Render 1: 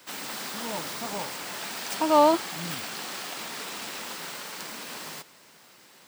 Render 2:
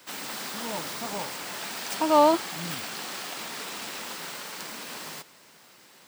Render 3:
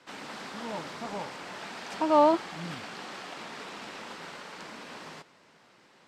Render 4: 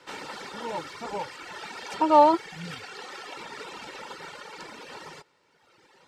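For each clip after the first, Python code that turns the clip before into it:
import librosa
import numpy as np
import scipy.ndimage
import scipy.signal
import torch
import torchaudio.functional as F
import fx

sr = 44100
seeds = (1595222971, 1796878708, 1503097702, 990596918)

y1 = x
y2 = scipy.signal.sosfilt(scipy.signal.butter(2, 7400.0, 'lowpass', fs=sr, output='sos'), y1)
y2 = fx.high_shelf(y2, sr, hz=3500.0, db=-11.5)
y2 = y2 * 10.0 ** (-1.5 / 20.0)
y3 = fx.dereverb_blind(y2, sr, rt60_s=1.6)
y3 = y3 + 0.47 * np.pad(y3, (int(2.2 * sr / 1000.0), 0))[:len(y3)]
y3 = y3 * 10.0 ** (4.0 / 20.0)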